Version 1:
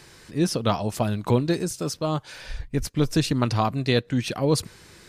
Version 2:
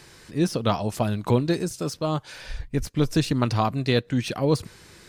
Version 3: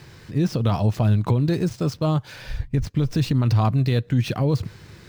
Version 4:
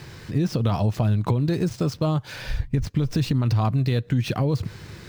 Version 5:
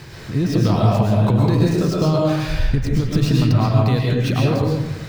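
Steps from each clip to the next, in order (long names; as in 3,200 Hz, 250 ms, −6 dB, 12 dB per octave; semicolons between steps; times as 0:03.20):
de-essing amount 60%
running median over 5 samples; parametric band 110 Hz +11 dB 1.5 octaves; brickwall limiter −13.5 dBFS, peak gain reduction 10.5 dB; level +1.5 dB
downward compressor 2.5 to 1, threshold −25 dBFS, peak gain reduction 7 dB; level +4 dB
convolution reverb RT60 1.0 s, pre-delay 80 ms, DRR −3 dB; level +2.5 dB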